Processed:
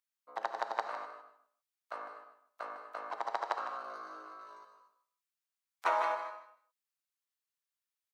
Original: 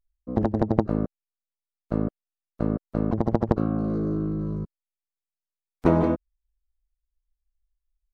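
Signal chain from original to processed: HPF 910 Hz 24 dB/oct; feedback echo 0.154 s, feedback 18%, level -12 dB; non-linear reverb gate 0.27 s flat, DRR 7.5 dB; gain +2 dB

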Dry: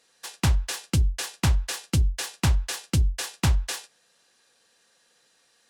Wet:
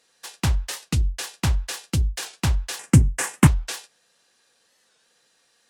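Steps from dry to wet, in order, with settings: 2.79–3.48 graphic EQ 125/250/500/1000/2000/4000/8000 Hz +10/+11/+3/+7/+10/-12/+11 dB; record warp 45 rpm, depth 160 cents

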